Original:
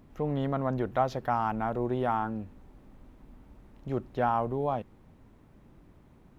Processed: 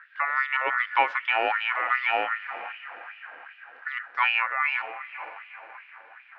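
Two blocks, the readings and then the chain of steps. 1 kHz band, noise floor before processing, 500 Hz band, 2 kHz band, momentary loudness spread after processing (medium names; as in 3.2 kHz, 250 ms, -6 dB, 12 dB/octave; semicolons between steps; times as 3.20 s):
+3.5 dB, -58 dBFS, -4.5 dB, +20.0 dB, 19 LU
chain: echo that smears into a reverb 505 ms, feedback 45%, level -13 dB; ring modulator 1.6 kHz; distance through air 290 m; LFO high-pass sine 2.6 Hz 460–2900 Hz; trim +6 dB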